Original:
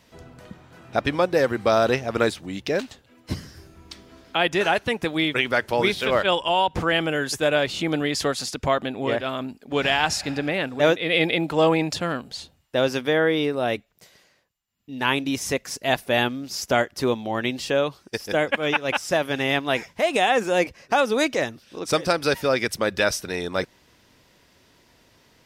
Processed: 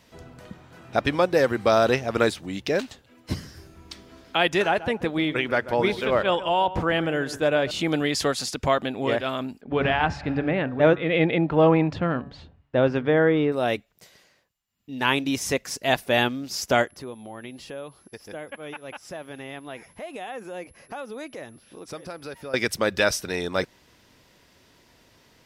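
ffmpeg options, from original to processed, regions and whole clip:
-filter_complex "[0:a]asettb=1/sr,asplit=3[s0][s1][s2];[s0]atrim=end=4.624[s3];[s1]atrim=start=4.62:end=7.71,asetpts=PTS-STARTPTS,afade=t=in:d=0.004:c=qsin,afade=t=out:st=3.086:d=0.004:c=qsin,highshelf=f=2400:g=-9.5,asplit=2[s4][s5];[s5]adelay=139,lowpass=f=1900:p=1,volume=0.2,asplit=2[s6][s7];[s7]adelay=139,lowpass=f=1900:p=1,volume=0.24,asplit=2[s8][s9];[s9]adelay=139,lowpass=f=1900:p=1,volume=0.24[s10];[s4][s6][s8][s10]amix=inputs=4:normalize=0,atrim=end_sample=136269[s11];[s2]atrim=start=7.706[s12];[s3][s11]acrossfade=d=0.004:c1=hsin:c2=qsin[s13];[s13][s12]acrossfade=d=0.004:c1=qsin:c2=hsin,asettb=1/sr,asplit=3[s14][s15][s16];[s14]atrim=end=9.614[s17];[s15]atrim=start=9.61:end=13.52,asetpts=PTS-STARTPTS,afade=t=in:d=0.004:c=qsin,afade=t=out:st=3.906:d=0.004:c=qsin,lowpass=2000,equalizer=f=72:w=0.41:g=8,bandreject=f=142:t=h:w=4,bandreject=f=284:t=h:w=4,bandreject=f=426:t=h:w=4,bandreject=f=568:t=h:w=4,bandreject=f=710:t=h:w=4,bandreject=f=852:t=h:w=4,bandreject=f=994:t=h:w=4,bandreject=f=1136:t=h:w=4,bandreject=f=1278:t=h:w=4,bandreject=f=1420:t=h:w=4,bandreject=f=1562:t=h:w=4,bandreject=f=1704:t=h:w=4,bandreject=f=1846:t=h:w=4[s18];[s16]atrim=start=13.516[s19];[s17][s18]acrossfade=d=0.004:c1=hsin:c2=qsin[s20];[s20][s19]acrossfade=d=0.004:c1=qsin:c2=hsin,asettb=1/sr,asplit=3[s21][s22][s23];[s21]atrim=end=16.874[s24];[s22]atrim=start=16.87:end=22.54,asetpts=PTS-STARTPTS,afade=t=in:d=0.004:c=qsin,afade=t=out:st=5.666:d=0.004:c=qsin,highshelf=f=3300:g=-9,acompressor=threshold=0.00562:ratio=2:attack=3.2:release=140:knee=1:detection=peak,aeval=exprs='val(0)+0.00126*sin(2*PI*11000*n/s)':c=same[s25];[s23]atrim=start=22.536[s26];[s24][s25]acrossfade=d=0.004:c1=hsin:c2=qsin[s27];[s27][s26]acrossfade=d=0.004:c1=qsin:c2=hsin"

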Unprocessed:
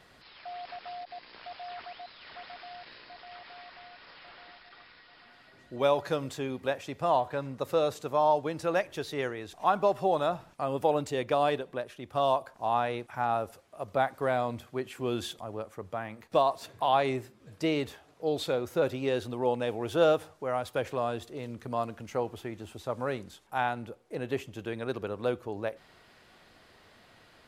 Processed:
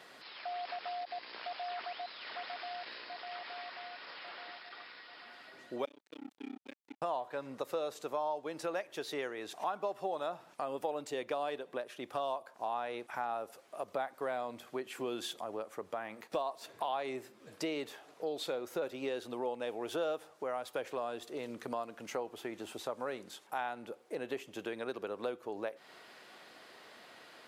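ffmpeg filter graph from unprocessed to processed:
-filter_complex "[0:a]asettb=1/sr,asplit=3[s0][s1][s2];[s0]atrim=end=5.854[s3];[s1]atrim=start=5.85:end=7.02,asetpts=PTS-STARTPTS,afade=t=in:d=0.004:c=qsin,afade=t=out:st=1.166:d=0.004:c=qsin,asplit=3[s4][s5][s6];[s4]bandpass=f=270:t=q:w=8,volume=1[s7];[s5]bandpass=f=2290:t=q:w=8,volume=0.501[s8];[s6]bandpass=f=3010:t=q:w=8,volume=0.355[s9];[s7][s8][s9]amix=inputs=3:normalize=0,tremolo=f=32:d=1,aeval=exprs='sgn(val(0))*max(abs(val(0))-0.00237,0)':c=same[s10];[s2]atrim=start=7.016[s11];[s3][s10]acrossfade=d=0.004:c1=hsin:c2=qsin[s12];[s12][s11]acrossfade=d=0.004:c1=qsin:c2=hsin,highpass=290,acompressor=threshold=0.00891:ratio=3,volume=1.5"

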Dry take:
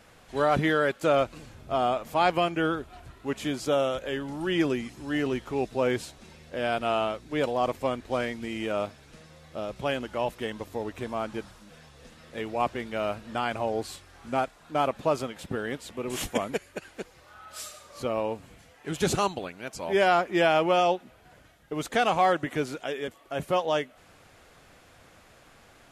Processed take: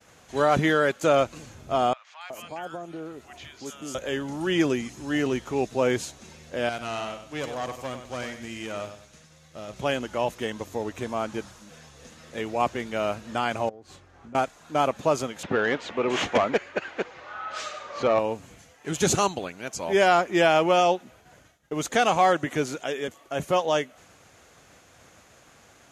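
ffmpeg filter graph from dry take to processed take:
-filter_complex "[0:a]asettb=1/sr,asplit=3[s0][s1][s2];[s0]atrim=end=1.934[s3];[s1]atrim=start=1.93:end=3.95,asetpts=PTS-STARTPTS,afade=t=in:d=0.004:c=qsin,afade=t=out:st=2.016:d=0.004:c=qsin,highpass=f=150:p=1,acompressor=threshold=0.00708:ratio=2:attack=3.2:release=140:knee=1:detection=peak,acrossover=split=1100|4700[s4][s5][s6];[s6]adelay=280[s7];[s4]adelay=370[s8];[s8][s5][s7]amix=inputs=3:normalize=0,atrim=end_sample=89082[s9];[s2]atrim=start=3.946[s10];[s3][s9]acrossfade=d=0.004:c1=hsin:c2=qsin[s11];[s11][s10]acrossfade=d=0.004:c1=qsin:c2=hsin,asettb=1/sr,asplit=3[s12][s13][s14];[s12]atrim=end=6.694[s15];[s13]atrim=start=6.69:end=9.74,asetpts=PTS-STARTPTS,afade=t=in:d=0.004:c=qsin,afade=t=out:st=3.046:d=0.004:c=qsin,equalizer=f=440:w=0.36:g=-6,aecho=1:1:96|192|288|384:0.316|0.101|0.0324|0.0104,atrim=end_sample=134505,aeval=exprs='(tanh(17.8*val(0)+0.5)-tanh(0.5))/17.8':c=same[s16];[s14]atrim=start=9.736[s17];[s15][s16]acrossfade=d=0.004:c1=hsin:c2=qsin[s18];[s18][s17]acrossfade=d=0.004:c1=qsin:c2=hsin,asettb=1/sr,asplit=3[s19][s20][s21];[s19]atrim=end=13.694[s22];[s20]atrim=start=13.69:end=14.35,asetpts=PTS-STARTPTS,afade=t=in:d=0.004:c=qsin,afade=t=out:st=0.656:d=0.004:c=qsin,lowpass=f=1100:p=1,acompressor=threshold=0.00631:ratio=10:attack=3.2:release=140:knee=1:detection=peak[s23];[s21]atrim=start=14.346[s24];[s22][s23]acrossfade=d=0.004:c1=hsin:c2=qsin[s25];[s25][s24]acrossfade=d=0.004:c1=qsin:c2=hsin,asettb=1/sr,asplit=3[s26][s27][s28];[s26]atrim=end=15.434[s29];[s27]atrim=start=15.43:end=18.19,asetpts=PTS-STARTPTS,afade=t=in:d=0.004:c=qsin,afade=t=out:st=2.756:d=0.004:c=qsin,lowpass=3500,asplit=2[s30][s31];[s31]highpass=f=720:p=1,volume=7.94,asoftclip=type=tanh:threshold=0.224[s32];[s30][s32]amix=inputs=2:normalize=0,lowpass=f=2200:p=1,volume=0.501[s33];[s28]atrim=start=18.186[s34];[s29][s33]acrossfade=d=0.004:c1=hsin:c2=qsin[s35];[s35][s34]acrossfade=d=0.004:c1=qsin:c2=hsin,agate=range=0.0224:threshold=0.00251:ratio=3:detection=peak,highpass=59,equalizer=f=6500:w=3.8:g=9.5,volume=1.33"

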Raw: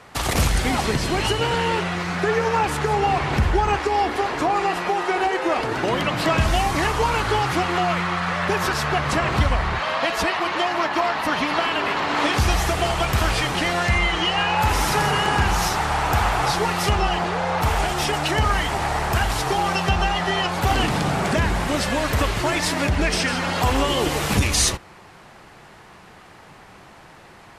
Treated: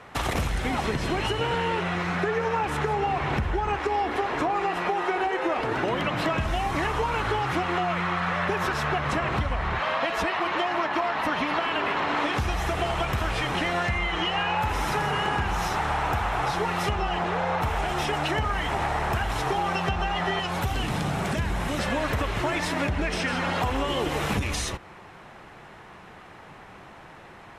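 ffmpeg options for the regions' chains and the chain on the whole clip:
-filter_complex "[0:a]asettb=1/sr,asplit=3[s0][s1][s2];[s0]atrim=end=20.394[s3];[s1]atrim=start=20.39:end=21.79,asetpts=PTS-STARTPTS,afade=t=in:d=0.004:c=qsin,afade=t=out:st=1.396:d=0.004:c=qsin,acrossover=split=190|3000[s4][s5][s6];[s5]acompressor=threshold=0.0562:ratio=6:attack=3.2:release=140:knee=2.83:detection=peak[s7];[s4][s7][s6]amix=inputs=3:normalize=0,highshelf=f=9400:g=7.5[s8];[s2]atrim=start=21.786[s9];[s3][s8]acrossfade=d=0.004:c1=hsin:c2=qsin[s10];[s10][s9]acrossfade=d=0.004:c1=qsin:c2=hsin,acompressor=threshold=0.0794:ratio=6,bass=f=250:g=-1,treble=f=4000:g=-8,bandreject=f=4600:w=13"

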